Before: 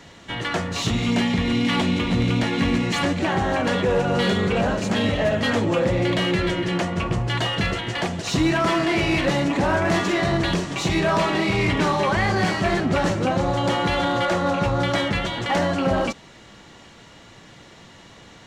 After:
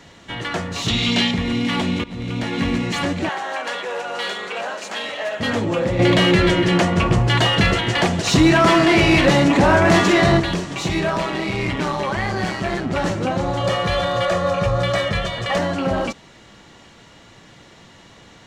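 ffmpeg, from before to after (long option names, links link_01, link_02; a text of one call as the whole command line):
ffmpeg -i in.wav -filter_complex "[0:a]asettb=1/sr,asplit=3[link_01][link_02][link_03];[link_01]atrim=end=0.884[link_04];[link_02]atrim=start=0.88:end=1.31,asetpts=PTS-STARTPTS,afade=type=in:duration=0.004:curve=qsin,afade=type=out:start_time=0.426:duration=0.004:curve=qsin,equalizer=frequency=3700:width=0.94:gain=12.5[link_05];[link_03]atrim=start=1.306[link_06];[link_04][link_05]acrossfade=duration=0.004:curve1=hsin:curve2=qsin[link_07];[link_07][link_06]acrossfade=duration=0.004:curve1=qsin:curve2=hsin,asettb=1/sr,asplit=3[link_08][link_09][link_10];[link_08]atrim=end=3.294[link_11];[link_09]atrim=start=3.29:end=5.4,asetpts=PTS-STARTPTS,afade=type=in:duration=0.004:curve=qsin,afade=type=out:start_time=2.106:duration=0.004:curve=qsin,highpass=710[link_12];[link_10]atrim=start=5.396[link_13];[link_11][link_12]acrossfade=duration=0.004:curve1=hsin:curve2=qsin[link_14];[link_14][link_13]acrossfade=duration=0.004:curve1=qsin:curve2=hsin,asettb=1/sr,asplit=3[link_15][link_16][link_17];[link_15]atrim=end=5.994[link_18];[link_16]atrim=start=5.99:end=10.4,asetpts=PTS-STARTPTS,afade=type=in:duration=0.004:curve=qsin,afade=type=out:start_time=4.406:duration=0.004:curve=qsin,acontrast=90[link_19];[link_17]atrim=start=10.396[link_20];[link_18][link_19]acrossfade=duration=0.004:curve1=hsin:curve2=qsin[link_21];[link_21][link_20]acrossfade=duration=0.004:curve1=qsin:curve2=hsin,asplit=3[link_22][link_23][link_24];[link_22]afade=type=out:start_time=11.09:duration=0.02[link_25];[link_23]tremolo=f=130:d=0.462,afade=type=in:start_time=11.09:duration=0.02,afade=type=out:start_time=12.95:duration=0.02[link_26];[link_24]afade=type=in:start_time=12.95:duration=0.02[link_27];[link_25][link_26][link_27]amix=inputs=3:normalize=0,asettb=1/sr,asplit=3[link_28][link_29][link_30];[link_28]atrim=end=13.604[link_31];[link_29]atrim=start=13.6:end=15.58,asetpts=PTS-STARTPTS,afade=type=in:duration=0.004:curve=qsin,afade=type=out:start_time=1.976:duration=0.004:curve=qsin,aecho=1:1:1.7:0.73,atrim=end_sample=87318[link_32];[link_30]atrim=start=15.576[link_33];[link_31][link_32]acrossfade=duration=0.004:curve1=hsin:curve2=qsin[link_34];[link_34][link_33]acrossfade=duration=0.004:curve1=qsin:curve2=hsin,asplit=2[link_35][link_36];[link_35]atrim=end=2.04,asetpts=PTS-STARTPTS,afade=type=out:start_time=2.036:duration=0.004:curve=hsin:silence=0.141254[link_37];[link_36]atrim=start=2.04,asetpts=PTS-STARTPTS,afade=type=in:duration=0.54:silence=0.141254[link_38];[link_37][link_38]concat=n=2:v=0:a=1" out.wav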